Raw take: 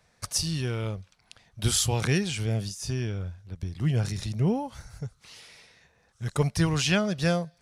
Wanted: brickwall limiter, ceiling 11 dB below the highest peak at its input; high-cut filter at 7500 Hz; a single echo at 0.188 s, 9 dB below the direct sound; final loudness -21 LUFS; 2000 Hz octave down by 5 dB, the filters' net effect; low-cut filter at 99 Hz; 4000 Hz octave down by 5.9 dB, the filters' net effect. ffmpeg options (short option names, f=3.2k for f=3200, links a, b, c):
-af "highpass=99,lowpass=7.5k,equalizer=f=2k:t=o:g=-5,equalizer=f=4k:t=o:g=-6,alimiter=limit=-22.5dB:level=0:latency=1,aecho=1:1:188:0.355,volume=12dB"